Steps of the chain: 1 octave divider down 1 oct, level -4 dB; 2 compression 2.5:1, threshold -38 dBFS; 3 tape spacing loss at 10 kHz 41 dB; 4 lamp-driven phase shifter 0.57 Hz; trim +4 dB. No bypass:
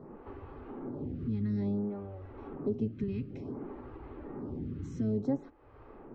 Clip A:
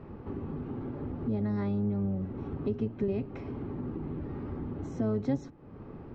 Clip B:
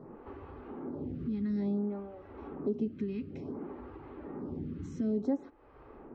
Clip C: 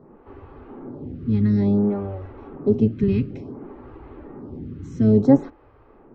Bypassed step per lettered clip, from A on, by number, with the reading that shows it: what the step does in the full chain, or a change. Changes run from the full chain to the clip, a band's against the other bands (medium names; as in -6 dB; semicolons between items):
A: 4, 2 kHz band +2.5 dB; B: 1, 125 Hz band -5.5 dB; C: 2, mean gain reduction 7.5 dB